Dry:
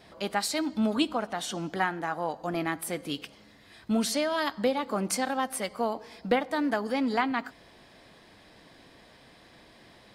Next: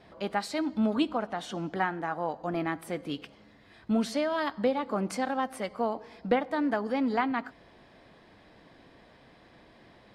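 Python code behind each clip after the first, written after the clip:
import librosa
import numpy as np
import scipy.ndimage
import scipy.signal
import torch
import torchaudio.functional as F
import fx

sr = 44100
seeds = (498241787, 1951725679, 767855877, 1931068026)

y = fx.lowpass(x, sr, hz=2000.0, slope=6)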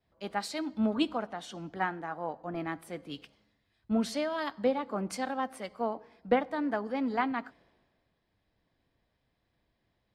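y = fx.band_widen(x, sr, depth_pct=70)
y = F.gain(torch.from_numpy(y), -3.5).numpy()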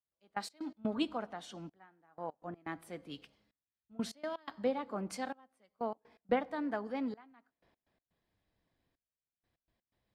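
y = fx.step_gate(x, sr, bpm=124, pattern='...x.x.xxxxxxx.', floor_db=-24.0, edge_ms=4.5)
y = F.gain(torch.from_numpy(y), -5.0).numpy()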